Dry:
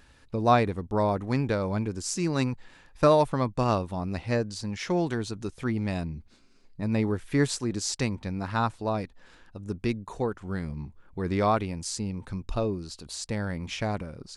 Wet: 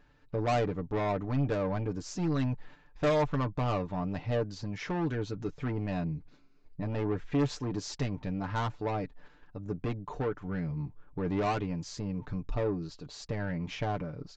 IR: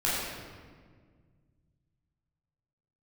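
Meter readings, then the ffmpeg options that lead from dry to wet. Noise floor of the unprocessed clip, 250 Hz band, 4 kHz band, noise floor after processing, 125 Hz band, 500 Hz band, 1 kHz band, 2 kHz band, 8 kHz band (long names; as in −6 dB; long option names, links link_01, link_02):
−56 dBFS, −4.0 dB, −7.0 dB, −58 dBFS, −2.5 dB, −5.0 dB, −6.5 dB, −5.0 dB, −12.5 dB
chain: -af "lowpass=frequency=1600:poles=1,aresample=16000,asoftclip=type=tanh:threshold=-27dB,aresample=44100,aecho=1:1:6.8:0.63,agate=range=-6dB:threshold=-48dB:ratio=16:detection=peak,areverse,acompressor=mode=upward:threshold=-49dB:ratio=2.5,areverse"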